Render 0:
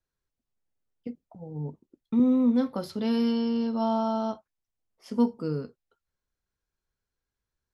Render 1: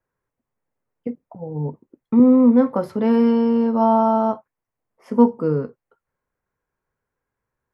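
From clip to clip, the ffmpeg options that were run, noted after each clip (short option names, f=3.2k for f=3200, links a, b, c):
-af "equalizer=f=125:t=o:w=1:g=9,equalizer=f=250:t=o:w=1:g=6,equalizer=f=500:t=o:w=1:g=10,equalizer=f=1k:t=o:w=1:g=11,equalizer=f=2k:t=o:w=1:g=9,equalizer=f=4k:t=o:w=1:g=-10,volume=-1.5dB"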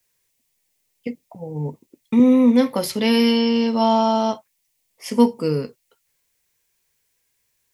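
-af "aexciter=amount=11.5:drive=4.8:freq=2.1k,volume=-1dB"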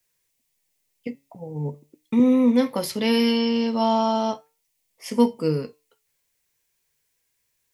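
-af "flanger=delay=6.1:depth=1.1:regen=87:speed=0.39:shape=sinusoidal,volume=1.5dB"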